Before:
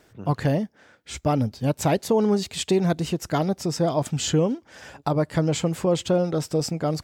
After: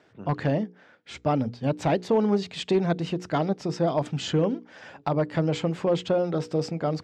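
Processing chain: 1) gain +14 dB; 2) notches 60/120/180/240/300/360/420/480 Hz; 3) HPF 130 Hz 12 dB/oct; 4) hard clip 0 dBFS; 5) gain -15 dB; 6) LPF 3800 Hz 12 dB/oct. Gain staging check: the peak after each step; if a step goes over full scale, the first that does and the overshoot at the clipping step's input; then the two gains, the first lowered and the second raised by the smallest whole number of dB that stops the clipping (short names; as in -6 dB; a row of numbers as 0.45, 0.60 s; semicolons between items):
+4.0, +4.0, +5.0, 0.0, -15.0, -14.5 dBFS; step 1, 5.0 dB; step 1 +9 dB, step 5 -10 dB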